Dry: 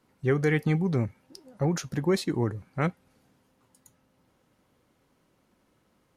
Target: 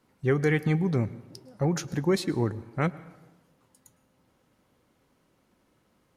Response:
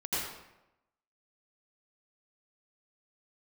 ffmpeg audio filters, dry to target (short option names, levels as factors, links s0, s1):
-filter_complex "[0:a]asplit=2[s0][s1];[1:a]atrim=start_sample=2205,asetrate=33516,aresample=44100[s2];[s1][s2]afir=irnorm=-1:irlink=0,volume=0.0473[s3];[s0][s3]amix=inputs=2:normalize=0"